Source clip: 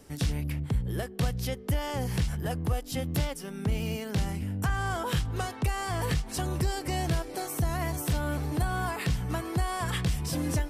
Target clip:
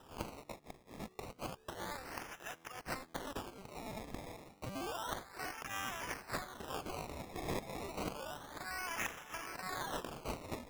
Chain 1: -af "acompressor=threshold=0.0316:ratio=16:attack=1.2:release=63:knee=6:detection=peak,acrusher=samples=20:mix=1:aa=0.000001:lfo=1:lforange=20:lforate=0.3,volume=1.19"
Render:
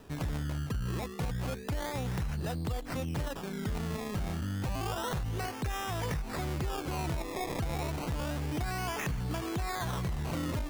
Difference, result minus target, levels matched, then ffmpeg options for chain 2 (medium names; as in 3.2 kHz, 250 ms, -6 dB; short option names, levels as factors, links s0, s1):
1 kHz band -3.5 dB
-af "acompressor=threshold=0.0316:ratio=16:attack=1.2:release=63:knee=6:detection=peak,highpass=1300,acrusher=samples=20:mix=1:aa=0.000001:lfo=1:lforange=20:lforate=0.3,volume=1.19"